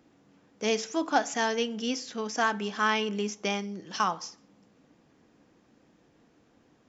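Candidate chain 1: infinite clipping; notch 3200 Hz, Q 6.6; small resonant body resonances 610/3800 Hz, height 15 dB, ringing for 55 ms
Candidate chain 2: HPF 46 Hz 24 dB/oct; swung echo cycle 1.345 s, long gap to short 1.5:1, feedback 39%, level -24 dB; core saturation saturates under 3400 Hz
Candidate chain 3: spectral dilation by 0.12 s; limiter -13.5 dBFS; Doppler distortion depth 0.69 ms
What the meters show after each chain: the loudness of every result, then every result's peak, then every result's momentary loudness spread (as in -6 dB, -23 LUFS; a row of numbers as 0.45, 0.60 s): -30.0, -32.5, -26.5 LUFS; -18.5, -11.0, -13.5 dBFS; 2, 18, 7 LU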